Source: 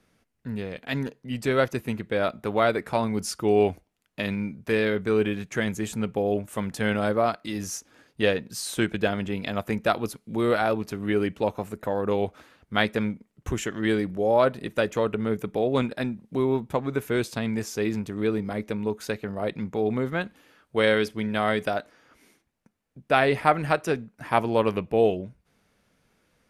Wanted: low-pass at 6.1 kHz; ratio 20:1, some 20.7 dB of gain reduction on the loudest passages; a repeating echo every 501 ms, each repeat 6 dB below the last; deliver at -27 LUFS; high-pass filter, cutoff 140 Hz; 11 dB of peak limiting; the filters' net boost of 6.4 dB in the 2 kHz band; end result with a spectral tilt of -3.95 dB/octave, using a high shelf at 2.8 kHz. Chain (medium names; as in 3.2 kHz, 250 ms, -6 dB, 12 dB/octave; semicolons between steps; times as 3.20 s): high-pass 140 Hz; low-pass 6.1 kHz; peaking EQ 2 kHz +6 dB; treble shelf 2.8 kHz +6 dB; compression 20:1, threshold -33 dBFS; peak limiter -26.5 dBFS; feedback delay 501 ms, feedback 50%, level -6 dB; trim +12 dB